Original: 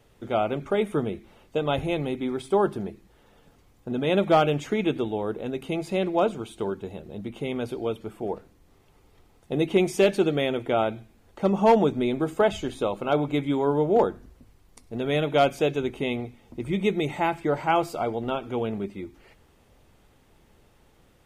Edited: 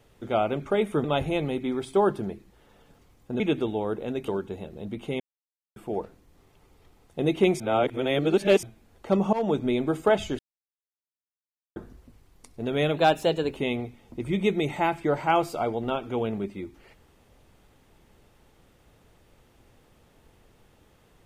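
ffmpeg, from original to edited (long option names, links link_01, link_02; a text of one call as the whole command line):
ffmpeg -i in.wav -filter_complex "[0:a]asplit=13[link_01][link_02][link_03][link_04][link_05][link_06][link_07][link_08][link_09][link_10][link_11][link_12][link_13];[link_01]atrim=end=1.042[link_14];[link_02]atrim=start=1.608:end=3.972[link_15];[link_03]atrim=start=4.778:end=5.662[link_16];[link_04]atrim=start=6.608:end=7.53,asetpts=PTS-STARTPTS,afade=type=out:start_time=0.918:duration=0.004:curve=hsin[link_17];[link_05]atrim=start=7.53:end=8.09,asetpts=PTS-STARTPTS,volume=0[link_18];[link_06]atrim=start=8.09:end=9.932,asetpts=PTS-STARTPTS,afade=type=in:duration=0.004:curve=hsin[link_19];[link_07]atrim=start=9.928:end=10.962,asetpts=PTS-STARTPTS,areverse[link_20];[link_08]atrim=start=10.958:end=11.66,asetpts=PTS-STARTPTS,afade=type=out:start_time=0.698:duration=0.004:curve=hsin:silence=0.0841395[link_21];[link_09]atrim=start=11.66:end=12.72,asetpts=PTS-STARTPTS,afade=type=in:duration=0.39:curve=qsin:silence=0.0841395,afade=type=out:start_time=1.056:duration=0.004:curve=hsin[link_22];[link_10]atrim=start=12.72:end=14.09,asetpts=PTS-STARTPTS,volume=0[link_23];[link_11]atrim=start=14.09:end=15.304,asetpts=PTS-STARTPTS,afade=type=in:duration=0.004:curve=hsin[link_24];[link_12]atrim=start=15.3:end=15.96,asetpts=PTS-STARTPTS,asetrate=49392,aresample=44100,atrim=end_sample=25987,asetpts=PTS-STARTPTS[link_25];[link_13]atrim=start=15.956[link_26];[link_14][link_15]acrossfade=duration=0.004:curve1=hsin:curve2=hsin[link_27];[link_27][link_16]acrossfade=duration=0.004:curve1=hsin:curve2=hsin[link_28];[link_17][link_18][link_19]concat=n=3:v=0:a=1[link_29];[link_28][link_29]acrossfade=duration=0.004:curve1=hsin:curve2=hsin[link_30];[link_30][link_20]acrossfade=duration=0.004:curve1=hsin:curve2=hsin[link_31];[link_21][link_22][link_23][link_24]concat=n=4:v=0:a=1[link_32];[link_31][link_32]acrossfade=duration=0.004:curve1=hsin:curve2=hsin[link_33];[link_33][link_25]acrossfade=duration=0.004:curve1=hsin:curve2=hsin[link_34];[link_34][link_26]acrossfade=duration=0.004:curve1=hsin:curve2=hsin" out.wav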